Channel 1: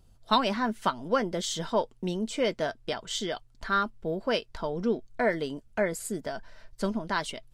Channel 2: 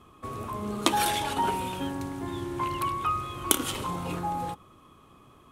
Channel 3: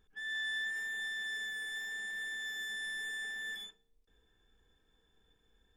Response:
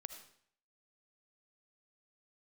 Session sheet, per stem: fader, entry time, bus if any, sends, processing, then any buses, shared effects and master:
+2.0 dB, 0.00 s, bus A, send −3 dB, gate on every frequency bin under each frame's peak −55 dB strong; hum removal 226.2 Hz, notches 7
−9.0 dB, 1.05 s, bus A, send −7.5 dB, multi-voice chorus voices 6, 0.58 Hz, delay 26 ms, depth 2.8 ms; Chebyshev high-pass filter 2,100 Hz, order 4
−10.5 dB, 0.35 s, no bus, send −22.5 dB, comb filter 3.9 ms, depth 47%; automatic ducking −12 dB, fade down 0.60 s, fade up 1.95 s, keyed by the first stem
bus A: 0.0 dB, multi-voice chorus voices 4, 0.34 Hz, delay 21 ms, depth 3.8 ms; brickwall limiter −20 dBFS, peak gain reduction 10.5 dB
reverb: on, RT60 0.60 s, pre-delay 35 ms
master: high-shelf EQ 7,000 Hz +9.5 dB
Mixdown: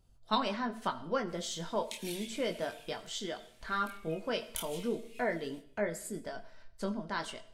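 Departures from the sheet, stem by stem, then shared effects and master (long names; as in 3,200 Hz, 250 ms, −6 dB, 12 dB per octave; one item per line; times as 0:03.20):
stem 1 +2.0 dB → −7.0 dB
stem 3: muted
master: missing high-shelf EQ 7,000 Hz +9.5 dB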